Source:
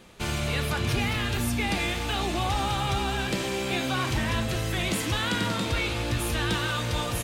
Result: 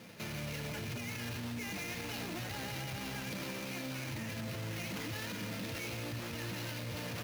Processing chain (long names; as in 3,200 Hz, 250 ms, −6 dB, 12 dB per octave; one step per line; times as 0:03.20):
lower of the sound and its delayed copy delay 0.44 ms
high-pass filter 99 Hz 24 dB per octave
notch comb filter 380 Hz
sample-rate reduction 8,400 Hz, jitter 20%
brickwall limiter −35 dBFS, peak gain reduction 18.5 dB
level +2 dB